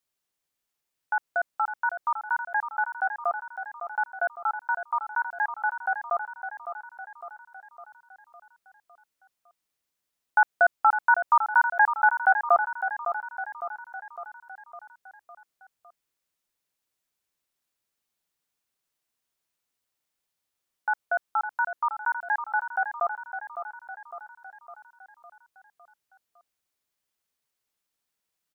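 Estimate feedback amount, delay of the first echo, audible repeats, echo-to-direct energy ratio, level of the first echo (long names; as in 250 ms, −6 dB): 55%, 557 ms, 6, −7.5 dB, −9.0 dB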